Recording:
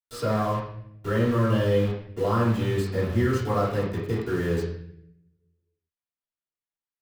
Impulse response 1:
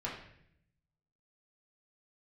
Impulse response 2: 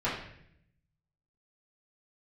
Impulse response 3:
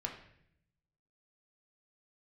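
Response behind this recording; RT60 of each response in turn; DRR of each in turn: 2; 0.70, 0.70, 0.70 s; -6.0, -11.5, 0.5 dB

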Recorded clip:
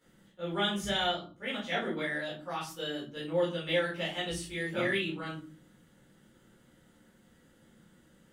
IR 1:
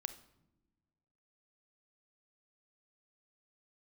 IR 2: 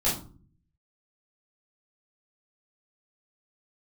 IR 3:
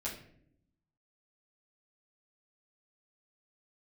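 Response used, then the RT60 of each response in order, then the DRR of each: 2; not exponential, 0.45 s, 0.65 s; 11.0, -9.5, -8.5 dB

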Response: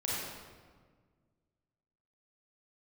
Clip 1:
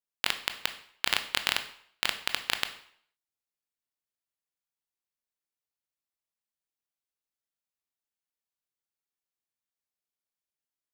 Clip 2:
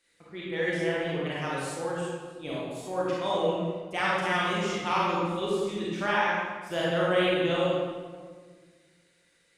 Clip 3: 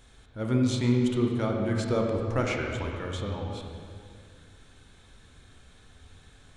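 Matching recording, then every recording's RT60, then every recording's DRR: 2; 0.60, 1.6, 2.2 s; 8.0, -7.0, 0.5 dB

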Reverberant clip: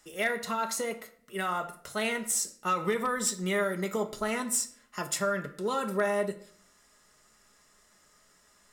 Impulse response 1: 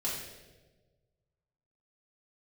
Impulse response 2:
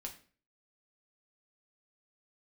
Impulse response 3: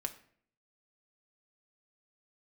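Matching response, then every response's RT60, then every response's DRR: 3; 1.3, 0.40, 0.55 s; -7.0, 1.0, 5.0 dB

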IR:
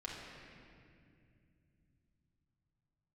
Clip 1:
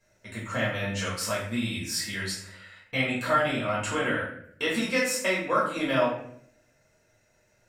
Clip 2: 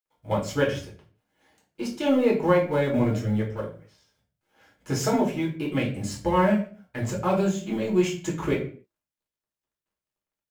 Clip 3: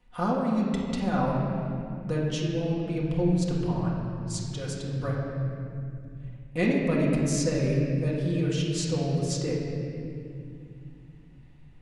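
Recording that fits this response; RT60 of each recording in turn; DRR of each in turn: 3; 0.65, 0.45, 2.3 s; -7.5, -3.5, -5.0 dB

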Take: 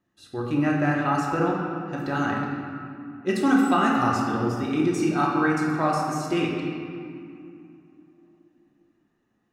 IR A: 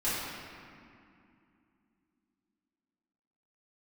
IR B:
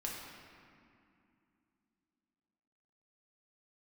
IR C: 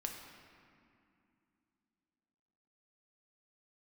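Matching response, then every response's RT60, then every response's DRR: B; 2.5, 2.5, 2.5 s; -13.0, -3.5, 1.5 dB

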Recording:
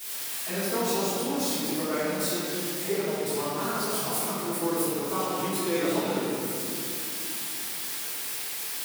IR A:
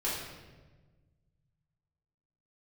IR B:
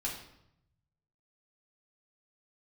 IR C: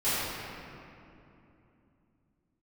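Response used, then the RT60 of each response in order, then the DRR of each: C; 1.3, 0.75, 2.9 s; -9.5, -4.5, -17.0 dB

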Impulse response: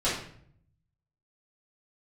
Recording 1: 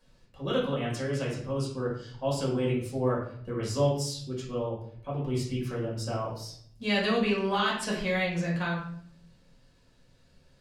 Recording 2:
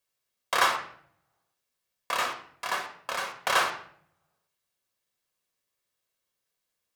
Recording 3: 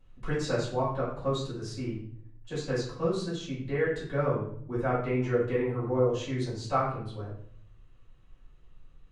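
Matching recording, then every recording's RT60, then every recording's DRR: 3; 0.60, 0.60, 0.60 s; -6.0, 3.0, -10.5 dB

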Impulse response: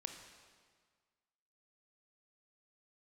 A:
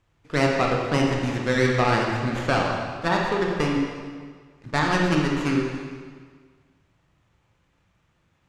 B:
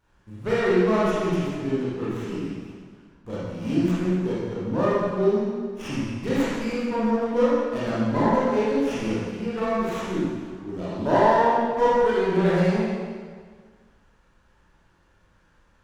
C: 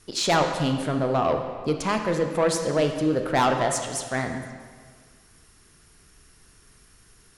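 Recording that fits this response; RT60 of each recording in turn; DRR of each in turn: C; 1.7, 1.7, 1.7 s; -1.0, -9.5, 5.0 dB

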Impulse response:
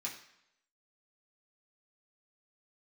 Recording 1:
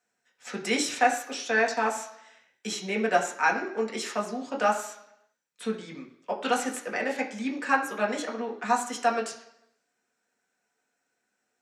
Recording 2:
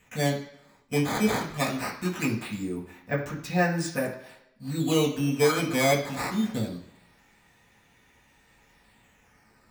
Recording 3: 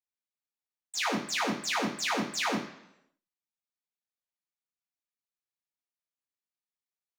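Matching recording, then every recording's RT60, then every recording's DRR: 2; 0.80, 0.80, 0.80 s; 0.0, -4.5, -14.5 dB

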